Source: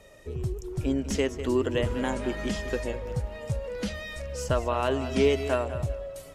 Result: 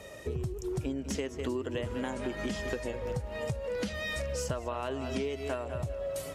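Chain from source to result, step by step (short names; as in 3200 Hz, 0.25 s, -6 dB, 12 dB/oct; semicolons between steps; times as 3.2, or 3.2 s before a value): HPF 62 Hz; compressor 12:1, threshold -37 dBFS, peak gain reduction 19.5 dB; gain +6.5 dB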